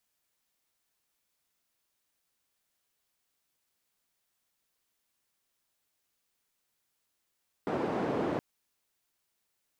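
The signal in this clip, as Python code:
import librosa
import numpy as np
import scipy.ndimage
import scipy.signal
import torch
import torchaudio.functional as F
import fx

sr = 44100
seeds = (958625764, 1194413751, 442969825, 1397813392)

y = fx.band_noise(sr, seeds[0], length_s=0.72, low_hz=190.0, high_hz=530.0, level_db=-31.5)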